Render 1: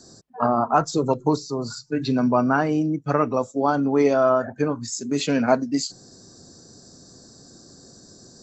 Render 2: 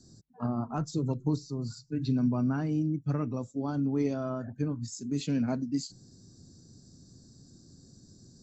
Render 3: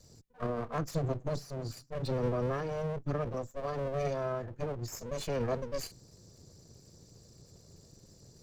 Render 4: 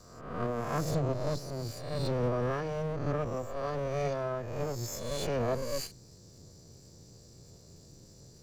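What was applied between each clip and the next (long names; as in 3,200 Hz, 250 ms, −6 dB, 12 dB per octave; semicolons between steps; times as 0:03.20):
drawn EQ curve 120 Hz 0 dB, 310 Hz −8 dB, 460 Hz −16 dB, 700 Hz −19 dB, 1,400 Hz −19 dB, 4,000 Hz −12 dB
lower of the sound and its delayed copy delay 1.7 ms
peak hold with a rise ahead of every peak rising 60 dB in 0.89 s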